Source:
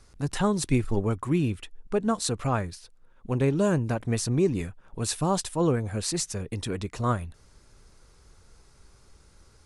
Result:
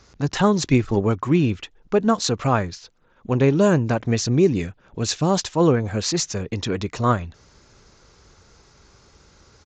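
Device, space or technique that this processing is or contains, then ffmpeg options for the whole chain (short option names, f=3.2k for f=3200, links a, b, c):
Bluetooth headset: -filter_complex "[0:a]asettb=1/sr,asplit=3[a][b][c];[a]atrim=end=4.114[d];[b]atrim=start=4.11:end=5.36,asetpts=PTS-STARTPTS,afade=t=in:d=0.004:c=qsin,afade=t=out:st=1.246:d=0.004:c=qsin,equalizer=f=1k:t=o:w=0.99:g=-5.5[e];[c]atrim=start=5.356[f];[d][e]acrossfade=d=0.004:c1=hsin:c2=qsin[g];[g][f]acrossfade=d=0.004:c1=qsin:c2=hsin,highpass=f=100:p=1,aresample=16000,aresample=44100,volume=7.5dB" -ar 16000 -c:a sbc -b:a 64k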